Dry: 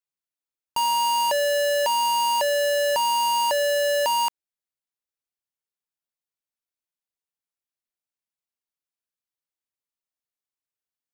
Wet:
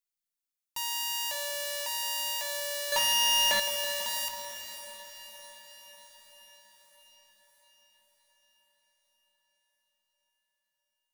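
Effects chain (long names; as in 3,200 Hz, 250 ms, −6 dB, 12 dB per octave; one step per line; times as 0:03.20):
stylus tracing distortion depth 0.36 ms
guitar amp tone stack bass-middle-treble 5-5-5
convolution reverb RT60 0.60 s, pre-delay 4 ms, DRR 7 dB
brickwall limiter −30 dBFS, peak gain reduction 7.5 dB
high-shelf EQ 6,000 Hz +3.5 dB
hum removal 187.1 Hz, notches 23
0:02.92–0:03.60: leveller curve on the samples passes 5
feedback delay with all-pass diffusion 579 ms, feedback 60%, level −13.5 dB
feedback echo at a low word length 164 ms, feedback 80%, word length 8 bits, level −11.5 dB
level +6 dB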